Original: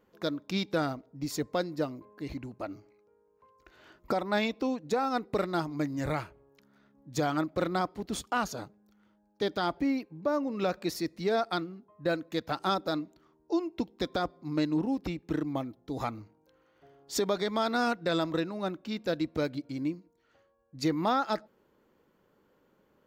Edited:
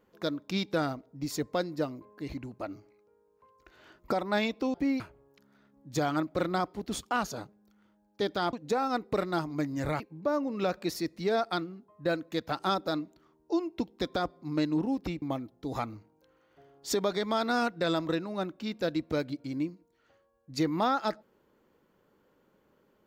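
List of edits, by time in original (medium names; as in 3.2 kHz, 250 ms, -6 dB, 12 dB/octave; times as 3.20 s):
4.74–6.21 s: swap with 9.74–10.00 s
15.22–15.47 s: delete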